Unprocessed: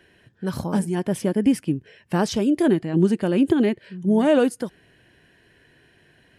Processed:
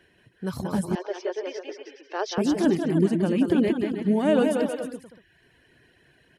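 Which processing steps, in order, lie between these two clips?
bouncing-ball echo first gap 0.18 s, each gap 0.75×, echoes 5; reverb removal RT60 0.55 s; 0.95–2.38 Chebyshev band-pass 380–6000 Hz, order 5; gain -3.5 dB

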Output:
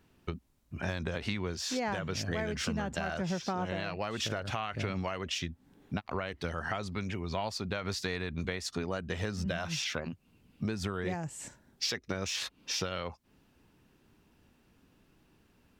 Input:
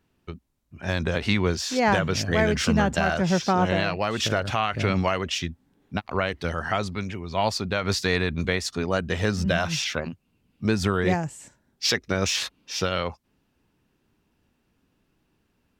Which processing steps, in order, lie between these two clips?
compressor 6:1, threshold -36 dBFS, peak gain reduction 18 dB; gain +4 dB

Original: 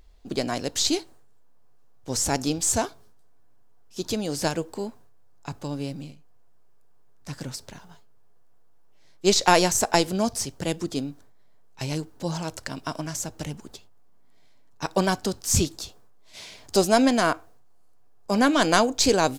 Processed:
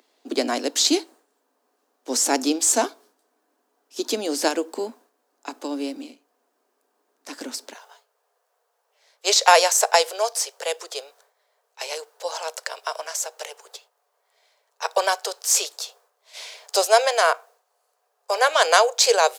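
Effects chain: steep high-pass 240 Hz 72 dB/oct, from 7.73 s 440 Hz; gain +4.5 dB

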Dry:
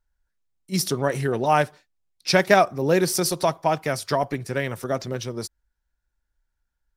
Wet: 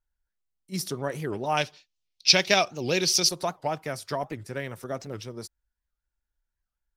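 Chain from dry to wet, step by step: 1.57–3.29 band shelf 3900 Hz +14.5 dB; record warp 78 rpm, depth 250 cents; gain -7.5 dB

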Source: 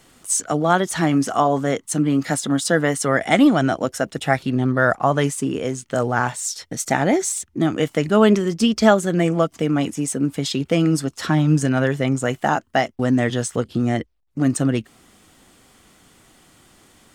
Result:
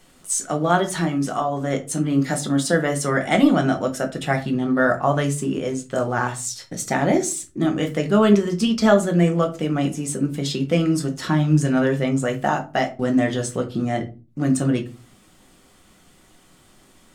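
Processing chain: 0.88–1.71 compressor, threshold -18 dBFS, peak gain reduction 6.5 dB; shoebox room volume 130 m³, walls furnished, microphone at 0.98 m; gain -3.5 dB

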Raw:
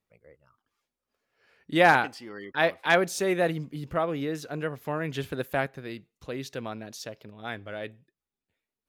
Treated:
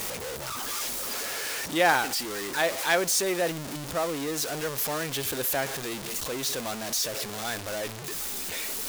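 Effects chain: zero-crossing step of -25 dBFS; tone controls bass -8 dB, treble +8 dB; gain -4 dB

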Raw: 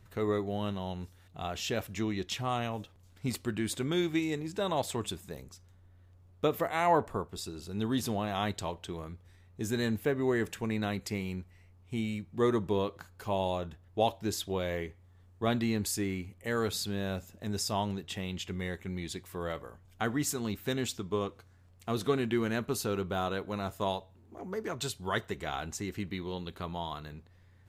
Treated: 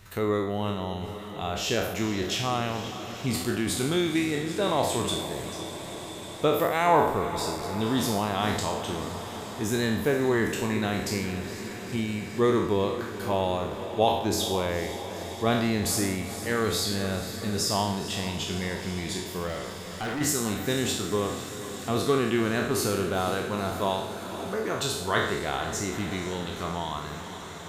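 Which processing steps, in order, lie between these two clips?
spectral trails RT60 0.76 s; diffused feedback echo 0.478 s, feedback 73%, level -12 dB; 19.47–20.21 hard clip -32 dBFS, distortion -23 dB; mismatched tape noise reduction encoder only; gain +3.5 dB

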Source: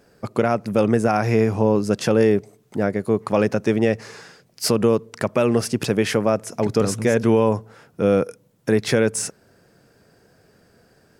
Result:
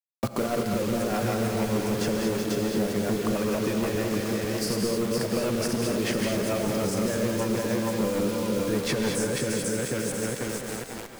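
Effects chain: regenerating reverse delay 0.247 s, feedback 66%, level -4 dB; notch 450 Hz, Q 15; sample leveller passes 3; compressor 16:1, threshold -20 dBFS, peak gain reduction 14 dB; rotary speaker horn 6.7 Hz; bit-crush 6-bit; non-linear reverb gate 0.25 s rising, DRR 3.5 dB; three-band squash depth 40%; gain -3.5 dB

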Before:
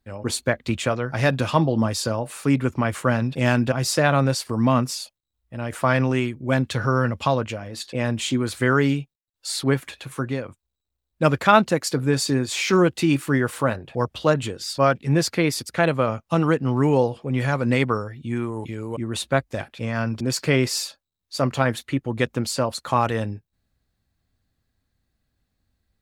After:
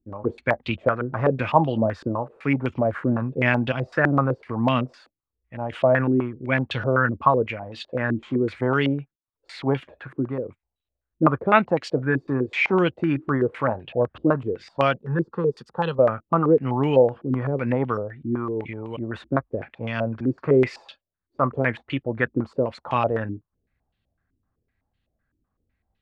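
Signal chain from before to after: 14.97–15.99 fixed phaser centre 440 Hz, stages 8; stepped low-pass 7.9 Hz 320–3000 Hz; gain -3.5 dB

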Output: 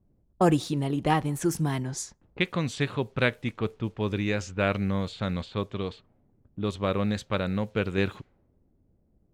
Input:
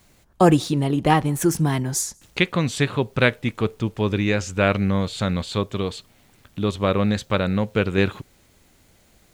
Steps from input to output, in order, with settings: low-pass opened by the level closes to 350 Hz, open at -18 dBFS; gain -6.5 dB

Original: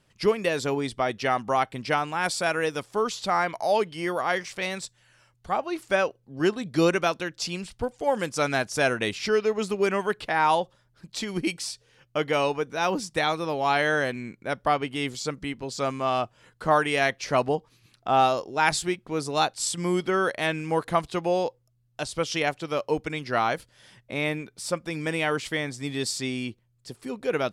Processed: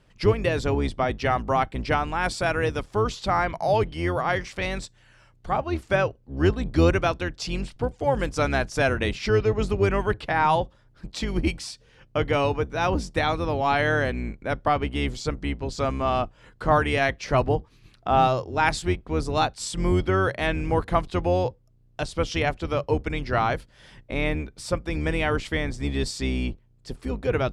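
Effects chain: octaver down 2 oct, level +3 dB; in parallel at -3 dB: compressor, threshold -35 dBFS, peak gain reduction 19 dB; on the sum: LPF 3500 Hz 6 dB/oct

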